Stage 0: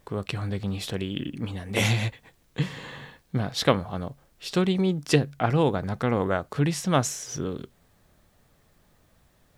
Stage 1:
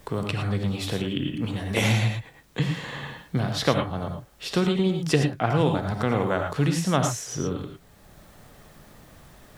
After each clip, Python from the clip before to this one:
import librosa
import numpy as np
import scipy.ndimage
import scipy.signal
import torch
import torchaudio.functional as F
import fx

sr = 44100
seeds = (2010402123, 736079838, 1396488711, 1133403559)

y = fx.rev_gated(x, sr, seeds[0], gate_ms=130, shape='rising', drr_db=4.0)
y = fx.band_squash(y, sr, depth_pct=40)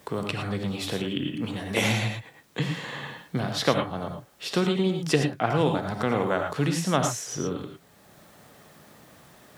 y = scipy.signal.sosfilt(scipy.signal.bessel(2, 160.0, 'highpass', norm='mag', fs=sr, output='sos'), x)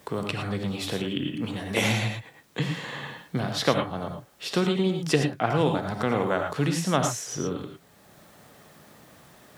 y = x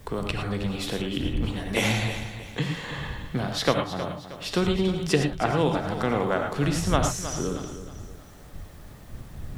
y = fx.dmg_wind(x, sr, seeds[1], corner_hz=89.0, level_db=-37.0)
y = fx.echo_feedback(y, sr, ms=315, feedback_pct=39, wet_db=-12)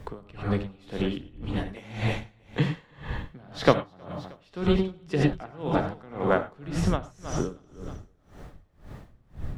y = fx.lowpass(x, sr, hz=2000.0, slope=6)
y = y * 10.0 ** (-26 * (0.5 - 0.5 * np.cos(2.0 * np.pi * 1.9 * np.arange(len(y)) / sr)) / 20.0)
y = y * 10.0 ** (4.5 / 20.0)